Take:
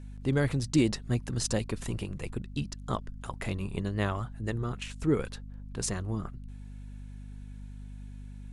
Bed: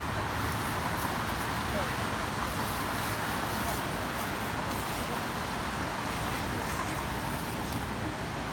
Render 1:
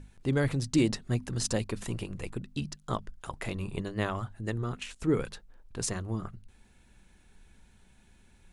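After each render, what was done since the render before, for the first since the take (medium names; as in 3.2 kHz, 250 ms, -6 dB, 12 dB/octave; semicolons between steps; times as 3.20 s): hum notches 50/100/150/200/250 Hz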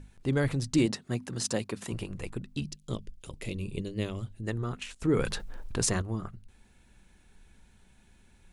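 0.86–1.92 s: high-pass 140 Hz; 2.63–4.43 s: high-order bell 1.1 kHz -14 dB; 5.05–6.02 s: level flattener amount 50%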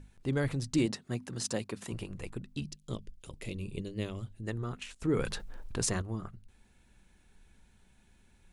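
trim -3.5 dB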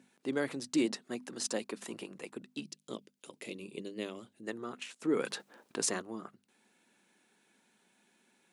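high-pass 230 Hz 24 dB/octave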